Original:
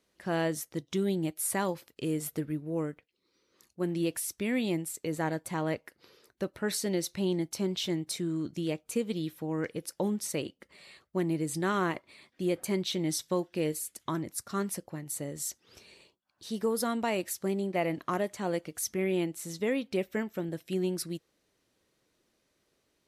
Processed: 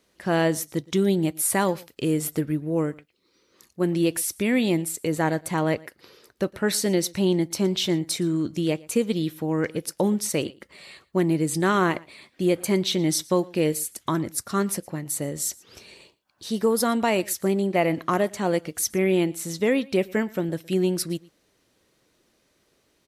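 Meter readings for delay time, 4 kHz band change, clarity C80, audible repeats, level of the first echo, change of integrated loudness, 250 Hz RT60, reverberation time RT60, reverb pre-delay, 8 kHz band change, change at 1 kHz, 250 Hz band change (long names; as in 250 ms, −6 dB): 116 ms, +8.0 dB, no reverb audible, 1, −23.5 dB, +8.0 dB, no reverb audible, no reverb audible, no reverb audible, +8.0 dB, +8.0 dB, +8.0 dB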